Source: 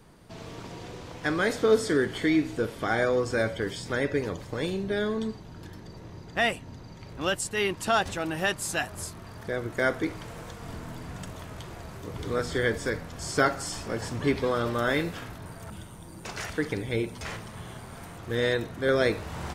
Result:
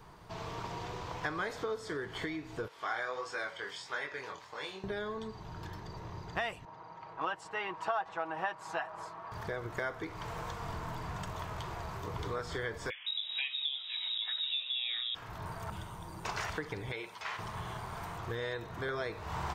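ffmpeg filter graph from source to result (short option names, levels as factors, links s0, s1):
-filter_complex "[0:a]asettb=1/sr,asplit=3[s0][s1][s2];[s0]atrim=end=2.684[s3];[s1]atrim=start=2.68:end=4.84,asetpts=PTS-STARTPTS,afade=t=in:d=0.004:c=qsin,afade=t=out:st=2.156:d=0.004:c=qsin,highshelf=f=11000:g=-11,flanger=delay=20:depth=5:speed=1.5,highpass=f=1400:p=1[s4];[s2]atrim=start=4.836[s5];[s3][s4]acrossfade=d=0.004:c1=hsin:c2=qsin[s6];[s6][s5]acrossfade=d=0.004:c1=qsin:c2=hsin,asettb=1/sr,asplit=3[s7][s8][s9];[s7]atrim=end=6.654[s10];[s8]atrim=start=6.65:end=9.32,asetpts=PTS-STARTPTS,afade=t=in:d=0.004:c=qsin,afade=t=out:st=2.666:d=0.004:c=qsin,bandpass=f=910:t=q:w=0.95,aecho=1:1:6.2:0.53,atrim=end_sample=117747[s11];[s9]atrim=start=9.316[s12];[s10][s11]acrossfade=d=0.004:c1=hsin:c2=qsin[s13];[s13][s12]acrossfade=d=0.004:c1=qsin:c2=hsin,asettb=1/sr,asplit=3[s14][s15][s16];[s14]atrim=end=12.904[s17];[s15]atrim=start=12.9:end=15.15,asetpts=PTS-STARTPTS,afade=t=in:d=0.004:c=qsin,afade=t=out:st=2.246:d=0.004:c=qsin,tiltshelf=f=1500:g=9.5,acrossover=split=220|770[s18][s19][s20];[s18]adelay=160[s21];[s19]adelay=270[s22];[s21][s22][s20]amix=inputs=3:normalize=0,atrim=end_sample=99225,lowpass=f=3300:t=q:w=0.5098,lowpass=f=3300:t=q:w=0.6013,lowpass=f=3300:t=q:w=0.9,lowpass=f=3300:t=q:w=2.563,afreqshift=-3900[s23];[s16]atrim=start=15.146[s24];[s17][s23]acrossfade=d=0.004:c1=hsin:c2=qsin[s25];[s25][s24]acrossfade=d=0.004:c1=qsin:c2=hsin,asettb=1/sr,asplit=3[s26][s27][s28];[s26]atrim=end=16.924[s29];[s27]atrim=start=16.92:end=17.39,asetpts=PTS-STARTPTS,afade=t=in:d=0.004:c=qsin,afade=t=out:st=0.466:d=0.004:c=qsin,acrossover=split=4500[s30][s31];[s31]acompressor=threshold=0.00158:ratio=4:attack=1:release=60[s32];[s30][s32]amix=inputs=2:normalize=0,highpass=f=1400:p=1[s33];[s28]atrim=start=17.386[s34];[s29][s33]acrossfade=d=0.004:c1=hsin:c2=qsin[s35];[s35][s34]acrossfade=d=0.004:c1=qsin:c2=hsin,bandreject=f=540:w=12,acompressor=threshold=0.02:ratio=6,equalizer=f=250:t=o:w=0.67:g=-9,equalizer=f=1000:t=o:w=0.67:g=8,equalizer=f=10000:t=o:w=0.67:g=-9"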